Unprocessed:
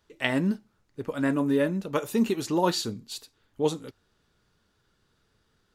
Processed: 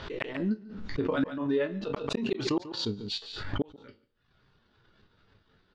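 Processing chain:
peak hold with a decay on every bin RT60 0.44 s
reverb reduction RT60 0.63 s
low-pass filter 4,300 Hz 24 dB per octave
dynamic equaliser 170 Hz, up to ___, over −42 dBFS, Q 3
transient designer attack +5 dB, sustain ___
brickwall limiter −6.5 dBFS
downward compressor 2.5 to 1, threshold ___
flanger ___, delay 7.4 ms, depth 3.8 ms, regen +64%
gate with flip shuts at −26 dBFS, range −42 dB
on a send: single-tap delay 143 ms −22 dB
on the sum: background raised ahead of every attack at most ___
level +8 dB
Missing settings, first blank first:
−4 dB, −9 dB, −32 dBFS, 0.45 Hz, 56 dB per second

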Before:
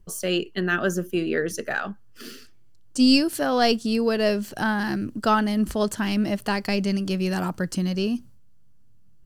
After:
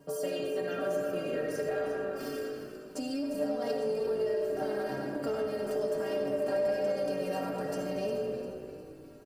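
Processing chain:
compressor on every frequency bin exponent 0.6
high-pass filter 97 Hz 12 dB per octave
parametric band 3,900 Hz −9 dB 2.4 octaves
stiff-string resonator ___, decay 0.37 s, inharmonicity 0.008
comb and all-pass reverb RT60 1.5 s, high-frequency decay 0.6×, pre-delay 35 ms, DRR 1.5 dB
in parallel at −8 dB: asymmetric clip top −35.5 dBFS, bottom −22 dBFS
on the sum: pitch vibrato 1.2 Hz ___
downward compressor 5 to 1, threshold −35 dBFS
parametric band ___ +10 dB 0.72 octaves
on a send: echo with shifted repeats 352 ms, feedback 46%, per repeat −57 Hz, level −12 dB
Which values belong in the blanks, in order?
140 Hz, 10 cents, 560 Hz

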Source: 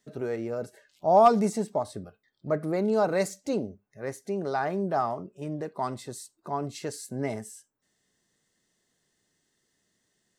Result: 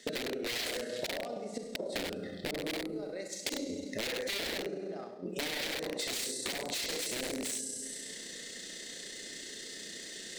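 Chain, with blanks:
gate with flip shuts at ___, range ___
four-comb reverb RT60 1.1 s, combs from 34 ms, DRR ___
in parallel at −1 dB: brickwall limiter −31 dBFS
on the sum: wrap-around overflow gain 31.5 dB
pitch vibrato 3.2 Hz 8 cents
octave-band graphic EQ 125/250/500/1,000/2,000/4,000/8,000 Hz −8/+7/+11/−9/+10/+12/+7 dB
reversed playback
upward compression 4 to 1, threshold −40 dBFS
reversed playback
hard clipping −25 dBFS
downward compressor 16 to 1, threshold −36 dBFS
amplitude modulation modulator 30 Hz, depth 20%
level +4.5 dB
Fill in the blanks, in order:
−22 dBFS, −34 dB, 3.5 dB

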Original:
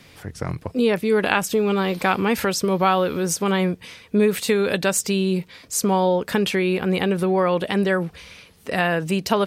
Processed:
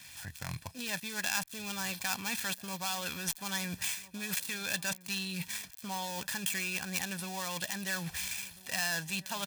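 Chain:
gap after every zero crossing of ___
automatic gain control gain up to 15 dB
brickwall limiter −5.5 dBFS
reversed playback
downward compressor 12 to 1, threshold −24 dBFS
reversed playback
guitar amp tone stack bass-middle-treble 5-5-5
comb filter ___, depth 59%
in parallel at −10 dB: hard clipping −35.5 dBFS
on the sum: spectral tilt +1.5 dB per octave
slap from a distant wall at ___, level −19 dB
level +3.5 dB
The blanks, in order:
0.11 ms, 1.2 ms, 230 metres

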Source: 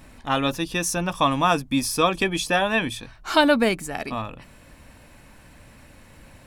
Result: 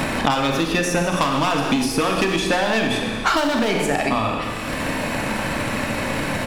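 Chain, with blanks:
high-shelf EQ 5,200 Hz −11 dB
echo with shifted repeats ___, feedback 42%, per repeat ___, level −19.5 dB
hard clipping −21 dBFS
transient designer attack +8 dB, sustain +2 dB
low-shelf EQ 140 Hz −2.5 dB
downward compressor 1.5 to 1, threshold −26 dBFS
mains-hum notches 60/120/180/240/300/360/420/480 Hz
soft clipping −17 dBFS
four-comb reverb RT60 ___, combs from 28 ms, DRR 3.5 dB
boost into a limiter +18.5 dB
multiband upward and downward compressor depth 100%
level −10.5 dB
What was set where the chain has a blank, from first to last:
93 ms, +97 Hz, 0.99 s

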